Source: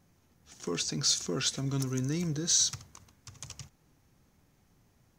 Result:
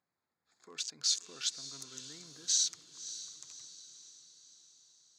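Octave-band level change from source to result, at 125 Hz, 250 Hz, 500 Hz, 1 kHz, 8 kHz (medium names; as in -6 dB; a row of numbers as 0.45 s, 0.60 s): -29.0 dB, -24.5 dB, -20.0 dB, -12.5 dB, -4.0 dB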